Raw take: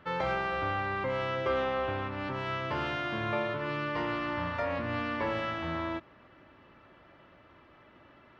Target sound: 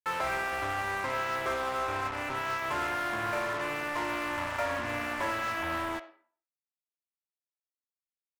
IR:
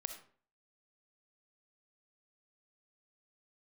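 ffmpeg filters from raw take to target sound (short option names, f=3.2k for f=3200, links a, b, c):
-filter_complex "[0:a]aecho=1:1:3:0.5,asplit=2[a][b];[b]acompressor=threshold=-44dB:ratio=6,volume=1dB[c];[a][c]amix=inputs=2:normalize=0,acrusher=bits=4:mix=0:aa=0.5,asoftclip=type=tanh:threshold=-31dB,asplit=2[d][e];[e]highpass=580,lowpass=2.4k[f];[1:a]atrim=start_sample=2205[g];[f][g]afir=irnorm=-1:irlink=0,volume=4.5dB[h];[d][h]amix=inputs=2:normalize=0"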